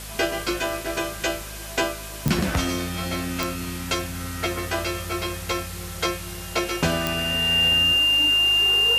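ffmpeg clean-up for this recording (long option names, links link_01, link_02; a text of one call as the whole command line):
ffmpeg -i in.wav -af "adeclick=threshold=4,bandreject=frequency=52.3:width_type=h:width=4,bandreject=frequency=104.6:width_type=h:width=4,bandreject=frequency=156.9:width_type=h:width=4,bandreject=frequency=209.2:width_type=h:width=4,bandreject=frequency=2800:width=30,afwtdn=0.014" out.wav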